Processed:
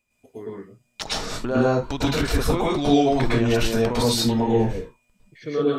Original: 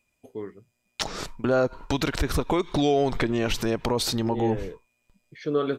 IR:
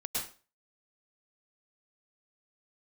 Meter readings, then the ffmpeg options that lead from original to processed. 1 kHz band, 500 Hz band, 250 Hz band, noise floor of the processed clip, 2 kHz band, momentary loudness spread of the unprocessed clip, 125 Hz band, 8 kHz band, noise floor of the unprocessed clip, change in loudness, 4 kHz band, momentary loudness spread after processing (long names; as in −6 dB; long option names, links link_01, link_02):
+3.5 dB, +3.0 dB, +5.0 dB, −69 dBFS, +3.0 dB, 15 LU, +5.5 dB, +4.0 dB, −75 dBFS, +4.0 dB, +4.0 dB, 17 LU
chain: -filter_complex "[1:a]atrim=start_sample=2205,afade=type=out:start_time=0.24:duration=0.01,atrim=end_sample=11025[link_01];[0:a][link_01]afir=irnorm=-1:irlink=0"